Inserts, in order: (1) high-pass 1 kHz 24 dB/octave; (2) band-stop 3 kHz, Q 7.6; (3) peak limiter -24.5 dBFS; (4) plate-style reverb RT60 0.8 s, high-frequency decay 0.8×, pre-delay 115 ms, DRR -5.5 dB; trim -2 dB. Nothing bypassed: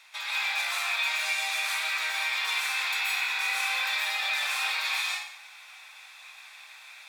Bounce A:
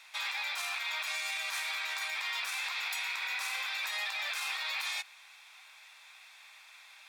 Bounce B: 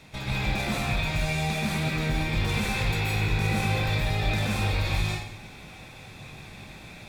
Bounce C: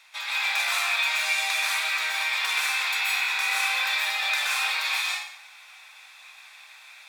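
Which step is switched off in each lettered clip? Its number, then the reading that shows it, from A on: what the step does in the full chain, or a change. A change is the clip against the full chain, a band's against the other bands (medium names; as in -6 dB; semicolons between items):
4, crest factor change -4.0 dB; 1, 500 Hz band +19.0 dB; 3, mean gain reduction 2.0 dB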